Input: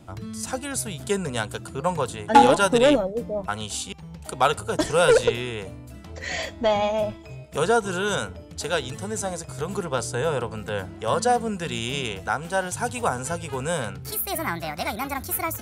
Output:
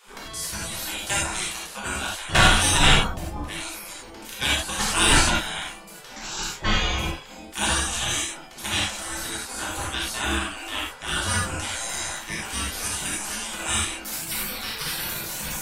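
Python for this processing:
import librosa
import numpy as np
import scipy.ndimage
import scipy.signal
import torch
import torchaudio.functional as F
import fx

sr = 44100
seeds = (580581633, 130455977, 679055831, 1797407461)

p1 = fx.spec_gate(x, sr, threshold_db=-20, keep='weak')
p2 = fx.low_shelf(p1, sr, hz=160.0, db=11.0)
p3 = 10.0 ** (-23.0 / 20.0) * np.tanh(p2 / 10.0 ** (-23.0 / 20.0))
p4 = p2 + (p3 * 10.0 ** (-9.5 / 20.0))
p5 = fx.rev_gated(p4, sr, seeds[0], gate_ms=120, shape='flat', drr_db=-5.5)
y = p5 * 10.0 ** (2.5 / 20.0)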